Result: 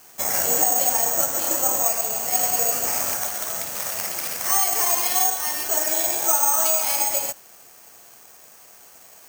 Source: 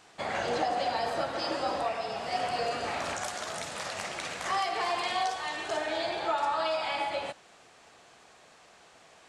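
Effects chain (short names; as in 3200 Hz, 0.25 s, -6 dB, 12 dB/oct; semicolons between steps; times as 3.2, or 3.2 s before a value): careless resampling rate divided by 6×, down filtered, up zero stuff; gain +2 dB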